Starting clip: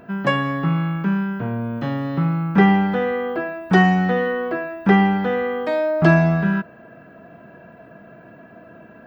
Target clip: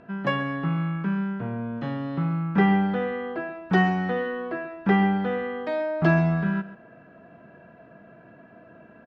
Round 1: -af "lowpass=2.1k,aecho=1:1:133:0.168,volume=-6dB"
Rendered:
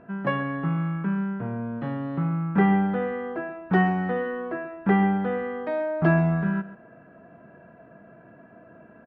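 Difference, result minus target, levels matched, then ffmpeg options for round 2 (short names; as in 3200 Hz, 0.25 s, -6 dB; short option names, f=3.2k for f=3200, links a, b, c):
4000 Hz band -7.0 dB
-af "lowpass=5.2k,aecho=1:1:133:0.168,volume=-6dB"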